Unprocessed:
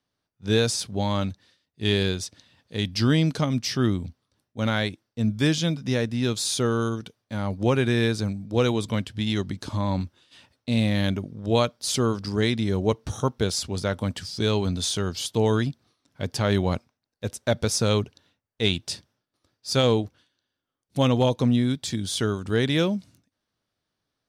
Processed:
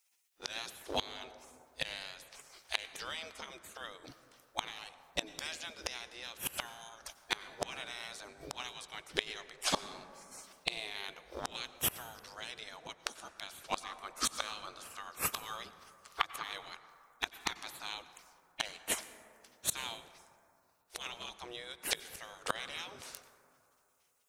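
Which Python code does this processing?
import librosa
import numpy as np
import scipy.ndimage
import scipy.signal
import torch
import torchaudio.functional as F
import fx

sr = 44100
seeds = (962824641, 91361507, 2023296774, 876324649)

y = fx.spec_gate(x, sr, threshold_db=-20, keep='weak')
y = fx.gate_flip(y, sr, shuts_db=-34.0, range_db=-25)
y = fx.peak_eq(y, sr, hz=1200.0, db=12.5, octaves=0.27, at=(13.78, 16.44))
y = fx.rev_plate(y, sr, seeds[0], rt60_s=2.7, hf_ratio=0.3, predelay_ms=80, drr_db=13.0)
y = F.gain(torch.from_numpy(y), 17.0).numpy()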